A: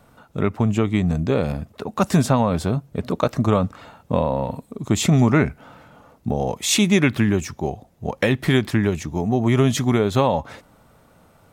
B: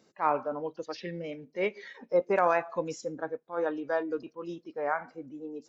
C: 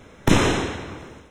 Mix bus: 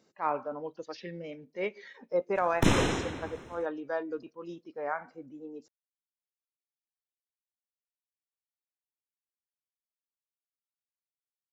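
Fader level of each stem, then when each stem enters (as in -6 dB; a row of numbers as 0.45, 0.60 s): off, -3.5 dB, -7.0 dB; off, 0.00 s, 2.35 s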